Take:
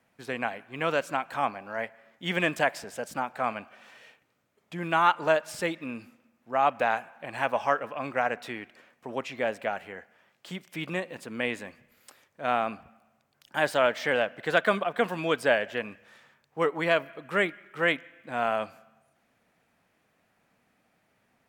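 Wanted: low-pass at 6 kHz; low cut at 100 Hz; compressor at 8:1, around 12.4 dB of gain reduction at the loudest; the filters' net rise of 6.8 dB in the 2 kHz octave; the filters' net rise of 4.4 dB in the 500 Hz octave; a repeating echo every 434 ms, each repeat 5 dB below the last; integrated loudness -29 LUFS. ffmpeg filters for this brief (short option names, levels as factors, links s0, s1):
-af "highpass=100,lowpass=6000,equalizer=f=500:t=o:g=5,equalizer=f=2000:t=o:g=8.5,acompressor=threshold=0.0501:ratio=8,aecho=1:1:434|868|1302|1736|2170|2604|3038:0.562|0.315|0.176|0.0988|0.0553|0.031|0.0173,volume=1.33"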